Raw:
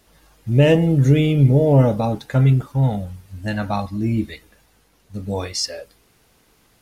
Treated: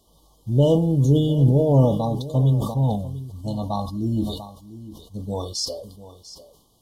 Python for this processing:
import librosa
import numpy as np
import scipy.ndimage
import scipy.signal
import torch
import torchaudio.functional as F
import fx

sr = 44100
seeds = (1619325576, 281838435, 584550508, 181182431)

y = fx.brickwall_bandstop(x, sr, low_hz=1200.0, high_hz=2900.0)
y = y + 10.0 ** (-15.5 / 20.0) * np.pad(y, (int(695 * sr / 1000.0), 0))[:len(y)]
y = fx.sustainer(y, sr, db_per_s=66.0)
y = y * librosa.db_to_amplitude(-3.5)